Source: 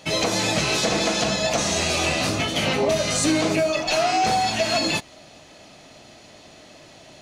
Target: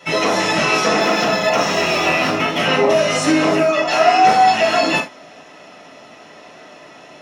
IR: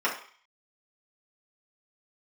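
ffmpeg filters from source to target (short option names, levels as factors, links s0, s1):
-filter_complex "[0:a]asettb=1/sr,asplit=3[s0][s1][s2];[s0]atrim=end=1.004[s3];[s1]atrim=start=1:end=2.59,asetpts=PTS-STARTPTS,afade=t=in:d=0.004:c=qsin,afade=t=out:st=1.586:d=0.004:c=qsin,adynamicsmooth=sensitivity=4:basefreq=3600[s4];[s2]atrim=start=2.586[s5];[s3][s4]acrossfade=d=0.004:c1=hsin:c2=qsin[s6];[s6][s5]acrossfade=d=0.004:c1=qsin:c2=hsin[s7];[1:a]atrim=start_sample=2205,afade=t=out:st=0.14:d=0.01,atrim=end_sample=6615[s8];[s7][s8]afir=irnorm=-1:irlink=0,volume=0.668"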